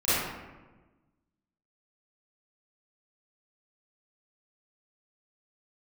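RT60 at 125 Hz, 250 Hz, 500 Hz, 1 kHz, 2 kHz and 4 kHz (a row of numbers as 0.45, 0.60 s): 1.6, 1.6, 1.3, 1.1, 1.0, 0.70 s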